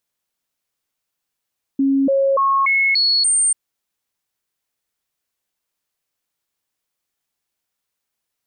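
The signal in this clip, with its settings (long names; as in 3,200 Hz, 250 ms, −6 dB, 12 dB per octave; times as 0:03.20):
stepped sweep 273 Hz up, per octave 1, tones 6, 0.29 s, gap 0.00 s −13 dBFS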